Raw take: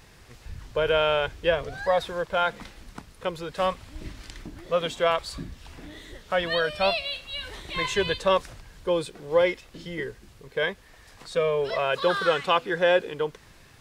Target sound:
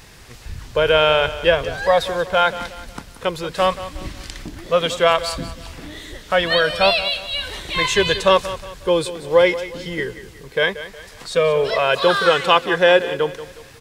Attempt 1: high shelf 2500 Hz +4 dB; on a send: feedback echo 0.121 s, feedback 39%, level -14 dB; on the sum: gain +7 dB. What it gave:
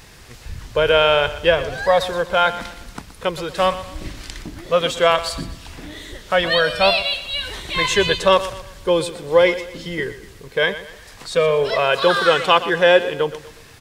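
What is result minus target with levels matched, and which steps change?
echo 61 ms early
change: feedback echo 0.182 s, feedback 39%, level -14 dB

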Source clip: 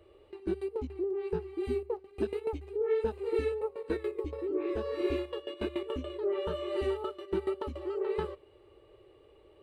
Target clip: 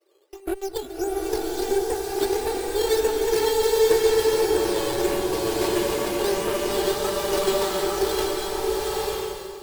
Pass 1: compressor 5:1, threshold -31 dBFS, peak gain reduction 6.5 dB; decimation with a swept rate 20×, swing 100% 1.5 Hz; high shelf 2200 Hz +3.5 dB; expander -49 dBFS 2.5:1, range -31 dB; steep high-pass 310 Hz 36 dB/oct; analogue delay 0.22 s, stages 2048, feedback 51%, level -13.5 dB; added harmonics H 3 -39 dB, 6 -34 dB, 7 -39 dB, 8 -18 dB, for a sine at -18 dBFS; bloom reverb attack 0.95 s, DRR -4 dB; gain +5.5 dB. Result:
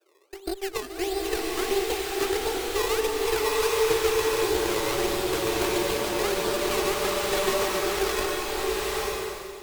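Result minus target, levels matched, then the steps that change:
compressor: peak gain reduction +6.5 dB; decimation with a swept rate: distortion +9 dB
change: decimation with a swept rate 8×, swing 100% 1.5 Hz; remove: compressor 5:1, threshold -31 dBFS, peak gain reduction 6.5 dB

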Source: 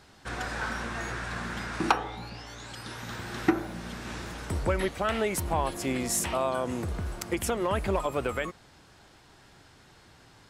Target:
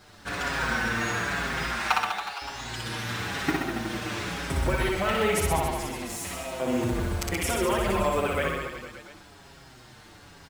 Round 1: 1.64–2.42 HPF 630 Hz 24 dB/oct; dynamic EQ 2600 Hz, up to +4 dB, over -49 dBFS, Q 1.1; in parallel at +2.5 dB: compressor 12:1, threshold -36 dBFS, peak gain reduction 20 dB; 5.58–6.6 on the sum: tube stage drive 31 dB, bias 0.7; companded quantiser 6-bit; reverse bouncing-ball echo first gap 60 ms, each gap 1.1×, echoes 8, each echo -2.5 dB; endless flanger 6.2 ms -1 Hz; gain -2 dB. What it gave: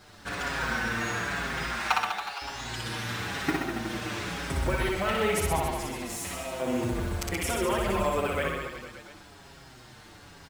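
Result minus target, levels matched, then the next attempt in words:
compressor: peak gain reduction +6 dB
1.64–2.42 HPF 630 Hz 24 dB/oct; dynamic EQ 2600 Hz, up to +4 dB, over -49 dBFS, Q 1.1; in parallel at +2.5 dB: compressor 12:1, threshold -29.5 dBFS, peak gain reduction 14 dB; 5.58–6.6 on the sum: tube stage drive 31 dB, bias 0.7; companded quantiser 6-bit; reverse bouncing-ball echo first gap 60 ms, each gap 1.1×, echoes 8, each echo -2.5 dB; endless flanger 6.2 ms -1 Hz; gain -2 dB

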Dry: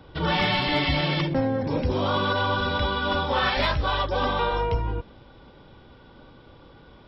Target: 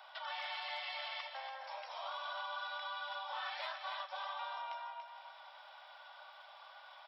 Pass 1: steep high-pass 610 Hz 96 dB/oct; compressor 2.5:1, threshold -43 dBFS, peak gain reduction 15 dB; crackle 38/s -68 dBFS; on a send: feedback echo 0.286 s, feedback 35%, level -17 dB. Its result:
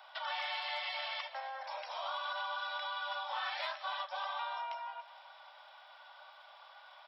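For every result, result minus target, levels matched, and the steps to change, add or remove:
echo-to-direct -10 dB; compressor: peak gain reduction -4.5 dB
change: feedback echo 0.286 s, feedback 35%, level -7 dB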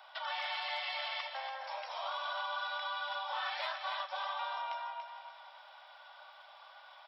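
compressor: peak gain reduction -4.5 dB
change: compressor 2.5:1, threshold -50.5 dBFS, peak gain reduction 19.5 dB

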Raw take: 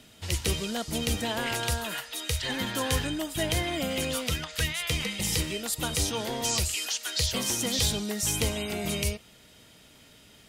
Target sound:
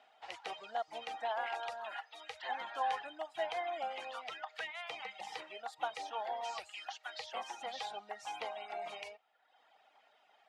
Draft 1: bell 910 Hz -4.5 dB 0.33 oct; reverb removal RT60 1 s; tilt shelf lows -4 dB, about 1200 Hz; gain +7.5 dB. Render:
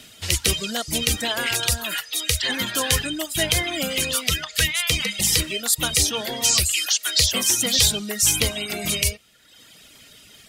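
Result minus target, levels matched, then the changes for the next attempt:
1000 Hz band -18.0 dB
add first: ladder band-pass 830 Hz, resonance 80%

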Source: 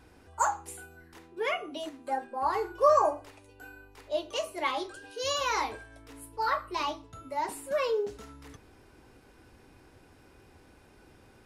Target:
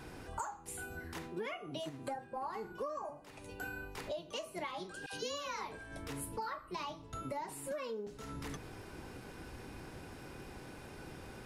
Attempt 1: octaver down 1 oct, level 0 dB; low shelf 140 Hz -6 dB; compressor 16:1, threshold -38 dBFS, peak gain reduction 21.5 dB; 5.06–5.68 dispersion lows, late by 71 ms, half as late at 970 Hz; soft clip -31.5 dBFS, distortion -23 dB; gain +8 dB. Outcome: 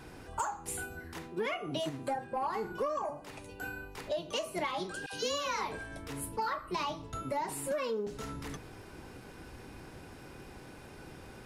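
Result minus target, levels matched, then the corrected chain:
compressor: peak gain reduction -7.5 dB
octaver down 1 oct, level 0 dB; low shelf 140 Hz -6 dB; compressor 16:1, threshold -46 dBFS, peak gain reduction 29 dB; 5.06–5.68 dispersion lows, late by 71 ms, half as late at 970 Hz; soft clip -31.5 dBFS, distortion -36 dB; gain +8 dB

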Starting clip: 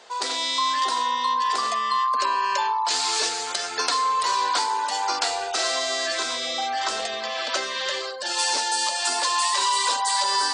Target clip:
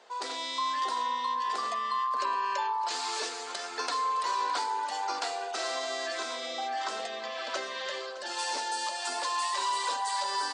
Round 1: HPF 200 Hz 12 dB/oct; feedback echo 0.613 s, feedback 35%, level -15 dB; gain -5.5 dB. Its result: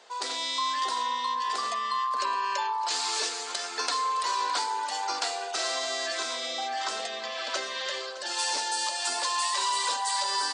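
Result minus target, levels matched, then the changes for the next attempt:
4000 Hz band +2.5 dB
add after HPF: high shelf 2500 Hz -7.5 dB

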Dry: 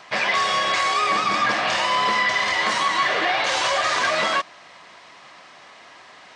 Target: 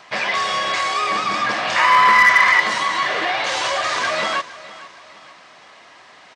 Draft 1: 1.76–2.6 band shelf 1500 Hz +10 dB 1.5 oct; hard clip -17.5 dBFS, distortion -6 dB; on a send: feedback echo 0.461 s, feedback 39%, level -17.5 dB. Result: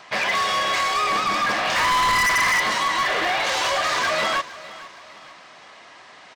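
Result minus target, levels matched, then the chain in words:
hard clip: distortion +19 dB
1.76–2.6 band shelf 1500 Hz +10 dB 1.5 oct; hard clip -6 dBFS, distortion -25 dB; on a send: feedback echo 0.461 s, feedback 39%, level -17.5 dB

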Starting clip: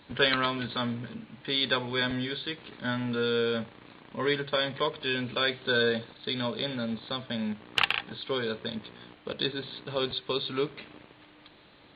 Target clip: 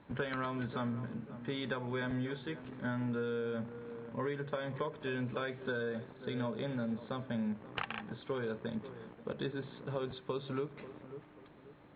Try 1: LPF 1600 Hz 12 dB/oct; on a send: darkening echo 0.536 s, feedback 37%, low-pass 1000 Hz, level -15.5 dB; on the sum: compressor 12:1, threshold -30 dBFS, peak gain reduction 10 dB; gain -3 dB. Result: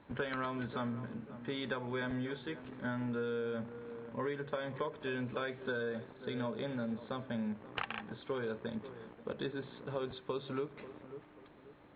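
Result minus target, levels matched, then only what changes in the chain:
125 Hz band -2.5 dB
add after compressor: bell 150 Hz +4.5 dB 0.86 oct

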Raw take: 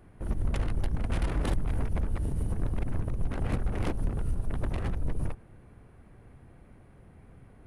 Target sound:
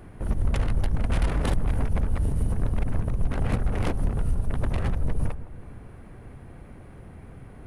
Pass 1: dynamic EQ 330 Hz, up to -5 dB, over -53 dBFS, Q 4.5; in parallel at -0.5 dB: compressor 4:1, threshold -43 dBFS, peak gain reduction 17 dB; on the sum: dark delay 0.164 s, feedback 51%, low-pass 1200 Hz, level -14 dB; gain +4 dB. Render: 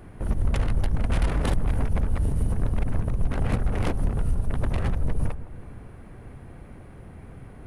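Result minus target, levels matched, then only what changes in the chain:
compressor: peak gain reduction -5.5 dB
change: compressor 4:1, threshold -50 dBFS, peak gain reduction 22.5 dB

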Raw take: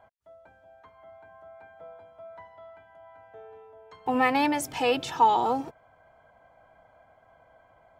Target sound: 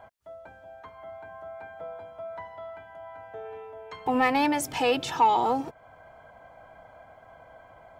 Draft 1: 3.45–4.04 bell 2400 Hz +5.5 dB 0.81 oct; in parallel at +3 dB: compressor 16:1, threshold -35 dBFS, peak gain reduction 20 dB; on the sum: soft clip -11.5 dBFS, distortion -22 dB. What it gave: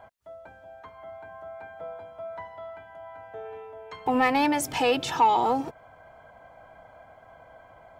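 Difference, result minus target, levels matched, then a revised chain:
compressor: peak gain reduction -6.5 dB
3.45–4.04 bell 2400 Hz +5.5 dB 0.81 oct; in parallel at +3 dB: compressor 16:1, threshold -42 dBFS, peak gain reduction 26.5 dB; on the sum: soft clip -11.5 dBFS, distortion -23 dB

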